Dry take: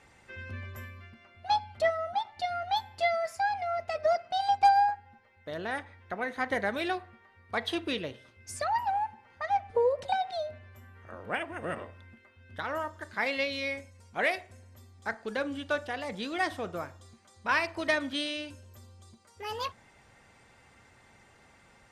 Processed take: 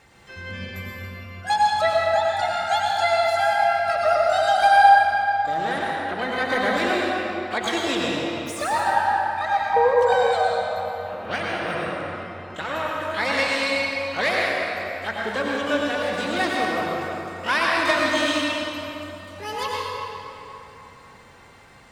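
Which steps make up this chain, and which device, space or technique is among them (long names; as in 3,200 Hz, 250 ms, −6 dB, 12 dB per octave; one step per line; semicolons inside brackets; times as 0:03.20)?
shimmer-style reverb (pitch-shifted copies added +12 semitones −10 dB; convolution reverb RT60 3.4 s, pre-delay 85 ms, DRR −4 dB)
level +4 dB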